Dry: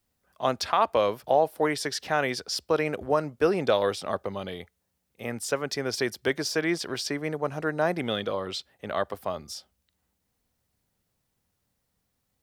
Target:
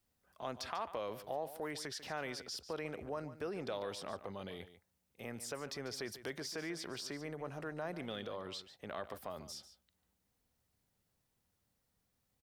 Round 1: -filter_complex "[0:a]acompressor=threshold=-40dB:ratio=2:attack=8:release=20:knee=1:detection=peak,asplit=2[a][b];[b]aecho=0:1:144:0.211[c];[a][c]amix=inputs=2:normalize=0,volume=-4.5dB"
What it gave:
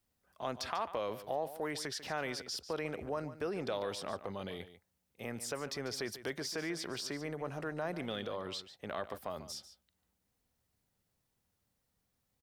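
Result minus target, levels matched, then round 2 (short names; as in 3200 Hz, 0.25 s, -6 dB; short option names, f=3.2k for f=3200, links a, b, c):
compressor: peak gain reduction -4 dB
-filter_complex "[0:a]acompressor=threshold=-47.5dB:ratio=2:attack=8:release=20:knee=1:detection=peak,asplit=2[a][b];[b]aecho=0:1:144:0.211[c];[a][c]amix=inputs=2:normalize=0,volume=-4.5dB"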